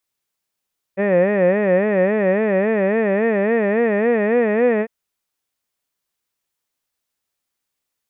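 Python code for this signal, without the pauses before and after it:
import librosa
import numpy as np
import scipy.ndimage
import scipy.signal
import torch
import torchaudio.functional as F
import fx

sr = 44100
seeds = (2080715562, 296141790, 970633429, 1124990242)

y = fx.vowel(sr, seeds[0], length_s=3.9, word='head', hz=188.0, glide_st=3.5, vibrato_hz=3.6, vibrato_st=1.5)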